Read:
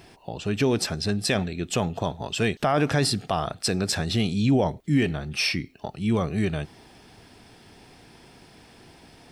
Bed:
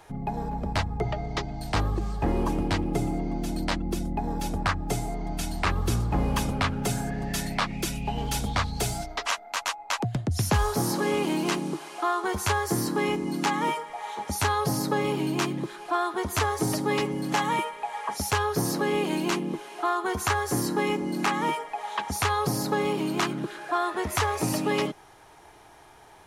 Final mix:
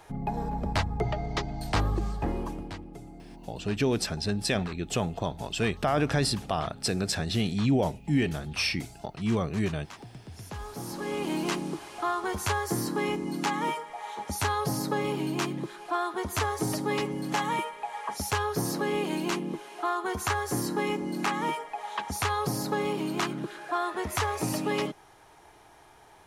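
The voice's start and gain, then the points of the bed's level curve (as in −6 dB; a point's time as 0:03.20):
3.20 s, −3.5 dB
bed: 0:02.07 −0.5 dB
0:02.97 −18 dB
0:10.44 −18 dB
0:11.35 −3 dB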